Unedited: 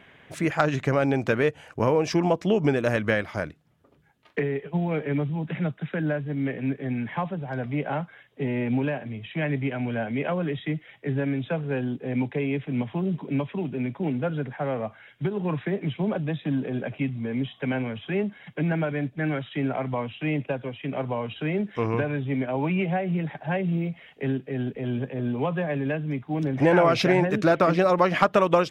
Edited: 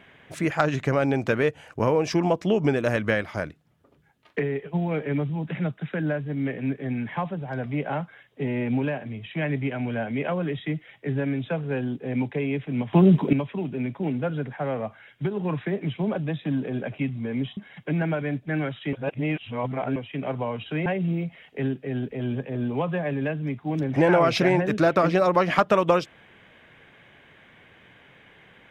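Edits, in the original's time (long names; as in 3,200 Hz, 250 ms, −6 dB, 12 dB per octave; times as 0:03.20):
0:12.93–0:13.33: clip gain +11 dB
0:17.57–0:18.27: remove
0:19.63–0:20.66: reverse
0:21.56–0:23.50: remove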